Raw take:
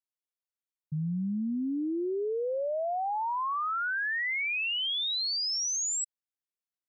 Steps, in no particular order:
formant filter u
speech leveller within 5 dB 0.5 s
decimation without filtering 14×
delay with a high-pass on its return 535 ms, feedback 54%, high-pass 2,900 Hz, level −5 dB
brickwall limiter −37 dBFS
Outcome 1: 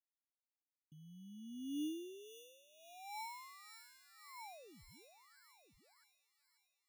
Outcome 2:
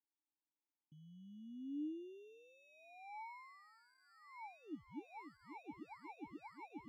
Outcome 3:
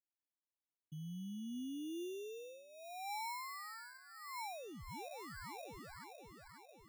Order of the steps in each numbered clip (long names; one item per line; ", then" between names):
brickwall limiter, then speech leveller, then formant filter, then decimation without filtering, then delay with a high-pass on its return
delay with a high-pass on its return, then brickwall limiter, then decimation without filtering, then speech leveller, then formant filter
formant filter, then brickwall limiter, then delay with a high-pass on its return, then speech leveller, then decimation without filtering